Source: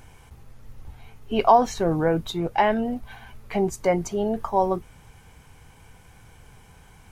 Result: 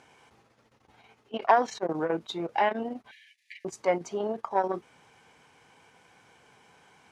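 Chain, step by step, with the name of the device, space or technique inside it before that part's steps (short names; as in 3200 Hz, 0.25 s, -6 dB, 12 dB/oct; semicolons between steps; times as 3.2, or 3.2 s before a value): public-address speaker with an overloaded transformer (core saturation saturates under 610 Hz; BPF 280–6300 Hz); 3.11–3.65 Chebyshev high-pass 1700 Hz, order 10; gain -2.5 dB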